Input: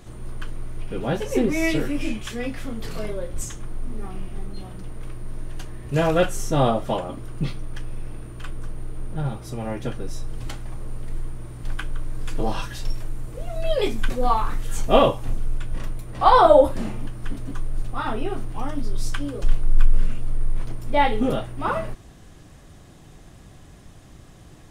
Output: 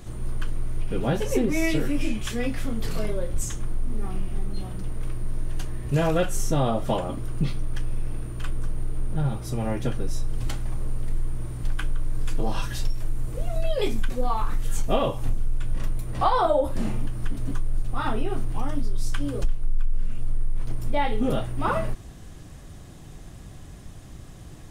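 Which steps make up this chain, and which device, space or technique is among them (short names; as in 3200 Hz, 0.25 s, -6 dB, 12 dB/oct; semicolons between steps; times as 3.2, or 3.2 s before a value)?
ASMR close-microphone chain (low shelf 190 Hz +5.5 dB; compressor 5:1, threshold -18 dBFS, peak gain reduction 15 dB; high shelf 6200 Hz +4.5 dB)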